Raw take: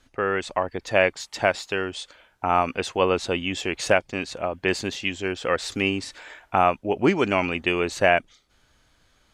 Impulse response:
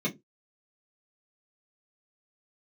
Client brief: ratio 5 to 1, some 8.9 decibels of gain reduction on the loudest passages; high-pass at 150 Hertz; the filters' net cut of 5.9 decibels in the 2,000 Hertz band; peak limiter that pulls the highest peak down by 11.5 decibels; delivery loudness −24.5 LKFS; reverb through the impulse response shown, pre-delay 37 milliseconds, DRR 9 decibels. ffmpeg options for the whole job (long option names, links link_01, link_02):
-filter_complex "[0:a]highpass=150,equalizer=frequency=2000:width_type=o:gain=-8,acompressor=threshold=-25dB:ratio=5,alimiter=limit=-21dB:level=0:latency=1,asplit=2[link_01][link_02];[1:a]atrim=start_sample=2205,adelay=37[link_03];[link_02][link_03]afir=irnorm=-1:irlink=0,volume=-16dB[link_04];[link_01][link_04]amix=inputs=2:normalize=0,volume=8.5dB"